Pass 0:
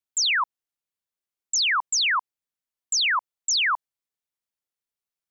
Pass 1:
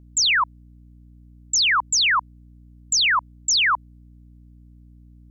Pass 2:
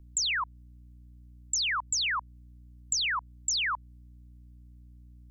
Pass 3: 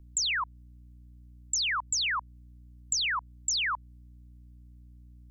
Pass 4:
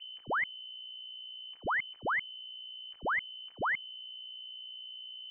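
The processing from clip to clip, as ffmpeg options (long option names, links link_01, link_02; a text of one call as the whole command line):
ffmpeg -i in.wav -af "aeval=exprs='val(0)+0.00316*(sin(2*PI*60*n/s)+sin(2*PI*2*60*n/s)/2+sin(2*PI*3*60*n/s)/3+sin(2*PI*4*60*n/s)/4+sin(2*PI*5*60*n/s)/5)':channel_layout=same,volume=3.5dB" out.wav
ffmpeg -i in.wav -filter_complex "[0:a]equalizer=frequency=290:width=0.31:gain=-8,acrossover=split=240[link_01][link_02];[link_02]acompressor=threshold=-28dB:ratio=6[link_03];[link_01][link_03]amix=inputs=2:normalize=0" out.wav
ffmpeg -i in.wav -af anull out.wav
ffmpeg -i in.wav -af "asoftclip=type=tanh:threshold=-33.5dB,lowpass=frequency=2600:width_type=q:width=0.5098,lowpass=frequency=2600:width_type=q:width=0.6013,lowpass=frequency=2600:width_type=q:width=0.9,lowpass=frequency=2600:width_type=q:width=2.563,afreqshift=-3100,volume=5.5dB" out.wav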